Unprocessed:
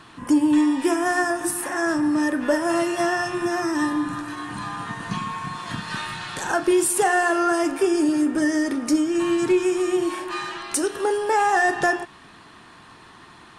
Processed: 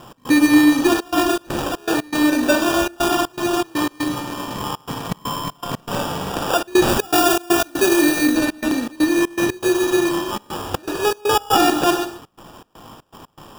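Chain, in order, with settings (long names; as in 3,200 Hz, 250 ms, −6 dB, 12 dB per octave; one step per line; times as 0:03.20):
loose part that buzzes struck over −27 dBFS, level −24 dBFS
parametric band 3,700 Hz +7.5 dB 0.77 octaves
decimation without filtering 21×
0:06.88–0:08.36: high-shelf EQ 6,400 Hz +7 dB
reverb whose tail is shaped and stops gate 160 ms flat, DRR 6 dB
gate pattern "x.xxxxxx.xx.xx." 120 BPM −24 dB
level +3.5 dB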